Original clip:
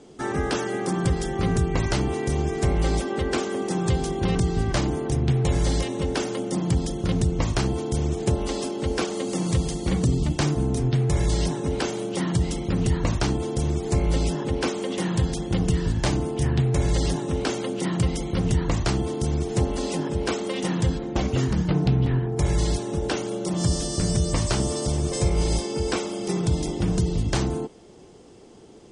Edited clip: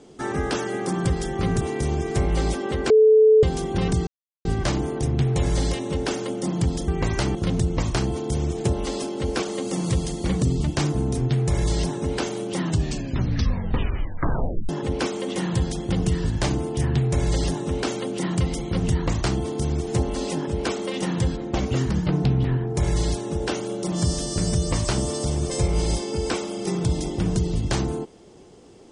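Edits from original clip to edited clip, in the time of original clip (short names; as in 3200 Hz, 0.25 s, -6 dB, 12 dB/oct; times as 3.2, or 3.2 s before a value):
1.61–2.08 move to 6.97
3.37–3.9 bleep 435 Hz -10.5 dBFS
4.54 insert silence 0.38 s
12.22 tape stop 2.09 s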